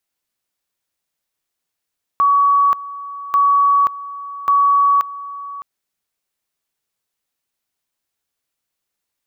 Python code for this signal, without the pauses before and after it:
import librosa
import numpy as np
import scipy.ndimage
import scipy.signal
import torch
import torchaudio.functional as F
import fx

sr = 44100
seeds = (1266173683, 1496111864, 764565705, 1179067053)

y = fx.two_level_tone(sr, hz=1130.0, level_db=-10.0, drop_db=17.0, high_s=0.53, low_s=0.61, rounds=3)